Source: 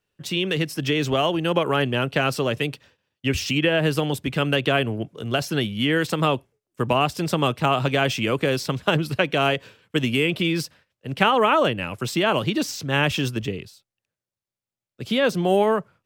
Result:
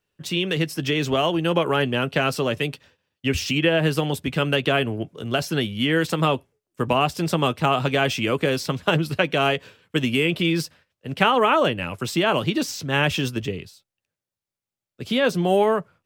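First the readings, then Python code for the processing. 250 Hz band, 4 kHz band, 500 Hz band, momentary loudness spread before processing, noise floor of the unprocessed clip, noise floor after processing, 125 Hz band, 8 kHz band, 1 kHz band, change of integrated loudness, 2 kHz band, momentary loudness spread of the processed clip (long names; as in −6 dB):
+0.5 dB, 0.0 dB, +0.5 dB, 8 LU, below −85 dBFS, below −85 dBFS, 0.0 dB, 0.0 dB, 0.0 dB, 0.0 dB, 0.0 dB, 8 LU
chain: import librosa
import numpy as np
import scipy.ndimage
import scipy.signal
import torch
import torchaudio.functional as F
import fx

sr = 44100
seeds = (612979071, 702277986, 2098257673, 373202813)

y = fx.doubler(x, sr, ms=12.0, db=-13.0)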